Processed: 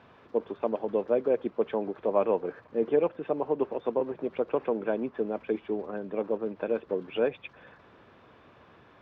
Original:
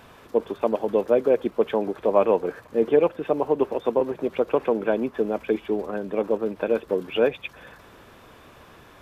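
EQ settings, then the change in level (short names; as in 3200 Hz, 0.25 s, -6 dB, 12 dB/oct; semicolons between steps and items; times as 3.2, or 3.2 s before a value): HPF 83 Hz; air absorption 220 m; -5.5 dB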